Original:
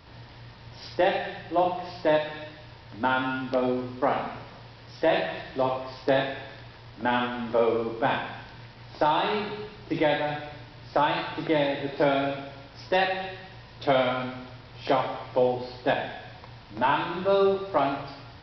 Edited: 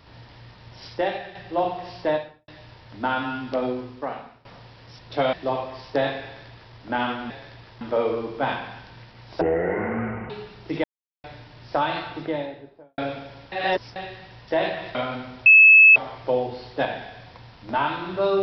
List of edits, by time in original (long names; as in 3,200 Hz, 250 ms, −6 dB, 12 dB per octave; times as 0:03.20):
0:00.87–0:01.35: fade out, to −6.5 dB
0:02.04–0:02.48: fade out and dull
0:03.63–0:04.45: fade out, to −21 dB
0:04.99–0:05.46: swap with 0:13.69–0:14.03
0:06.37–0:06.88: duplicate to 0:07.43
0:09.03–0:09.51: play speed 54%
0:10.05–0:10.45: silence
0:11.16–0:12.19: fade out and dull
0:12.73–0:13.17: reverse
0:14.54–0:15.04: beep over 2,600 Hz −7.5 dBFS